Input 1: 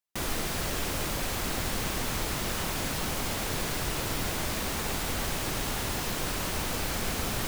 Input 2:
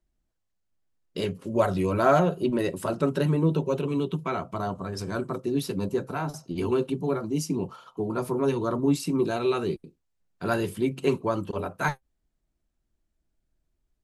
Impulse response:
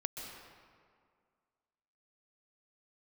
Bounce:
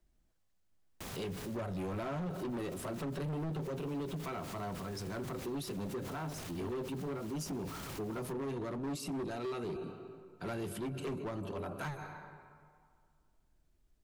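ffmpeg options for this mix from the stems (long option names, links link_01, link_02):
-filter_complex "[0:a]aeval=exprs='val(0)*sin(2*PI*130*n/s)':channel_layout=same,adelay=850,volume=-6dB[link_01];[1:a]volume=2.5dB,asplit=3[link_02][link_03][link_04];[link_03]volume=-17dB[link_05];[link_04]apad=whole_len=367026[link_06];[link_01][link_06]sidechaincompress=threshold=-31dB:ratio=8:attack=22:release=142[link_07];[2:a]atrim=start_sample=2205[link_08];[link_05][link_08]afir=irnorm=-1:irlink=0[link_09];[link_07][link_02][link_09]amix=inputs=3:normalize=0,acrossover=split=310[link_10][link_11];[link_11]acompressor=threshold=-24dB:ratio=10[link_12];[link_10][link_12]amix=inputs=2:normalize=0,volume=23.5dB,asoftclip=hard,volume=-23.5dB,alimiter=level_in=11dB:limit=-24dB:level=0:latency=1:release=12,volume=-11dB"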